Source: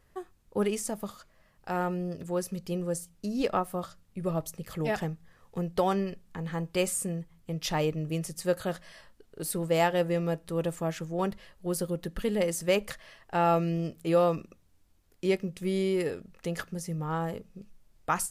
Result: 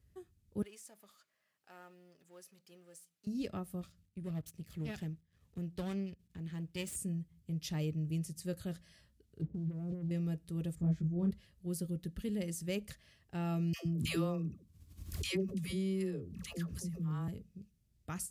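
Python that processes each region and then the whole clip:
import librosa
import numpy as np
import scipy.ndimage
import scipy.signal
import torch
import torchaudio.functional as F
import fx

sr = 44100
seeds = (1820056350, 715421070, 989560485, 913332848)

y = fx.chain(x, sr, fx.law_mismatch(coded='mu'),
    fx.highpass(hz=930.0, slope=12),
    fx.high_shelf(hz=2000.0, db=-11.0), at=(0.62, 3.27))
y = fx.chain(y, sr, fx.halfwave_gain(db=-12.0),
    fx.peak_eq(hz=2600.0, db=3.5, octaves=1.6), at=(3.81, 6.96))
y = fx.chain(y, sr, fx.gaussian_blur(sigma=18.0),
    fx.leveller(passes=2),
    fx.over_compress(threshold_db=-33.0, ratio=-1.0), at=(9.41, 10.11))
y = fx.chain(y, sr, fx.tilt_eq(slope=-3.5),
    fx.notch(hz=2800.0, q=5.2),
    fx.detune_double(cents=35), at=(10.75, 11.31))
y = fx.chain(y, sr, fx.peak_eq(hz=1100.0, db=11.5, octaves=0.21),
    fx.dispersion(late='lows', ms=127.0, hz=630.0),
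    fx.pre_swell(db_per_s=54.0), at=(13.73, 17.28))
y = scipy.signal.sosfilt(scipy.signal.butter(4, 60.0, 'highpass', fs=sr, output='sos'), y)
y = fx.tone_stack(y, sr, knobs='10-0-1')
y = fx.notch(y, sr, hz=500.0, q=12.0)
y = y * 10.0 ** (11.5 / 20.0)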